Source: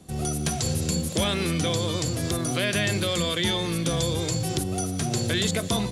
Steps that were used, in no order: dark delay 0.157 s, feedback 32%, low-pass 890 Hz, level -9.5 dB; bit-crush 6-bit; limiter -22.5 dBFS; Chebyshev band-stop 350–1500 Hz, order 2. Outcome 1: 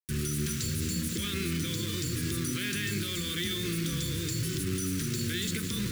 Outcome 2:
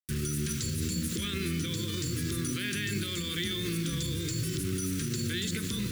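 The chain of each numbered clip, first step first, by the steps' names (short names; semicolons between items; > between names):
dark delay > limiter > bit-crush > Chebyshev band-stop; dark delay > bit-crush > limiter > Chebyshev band-stop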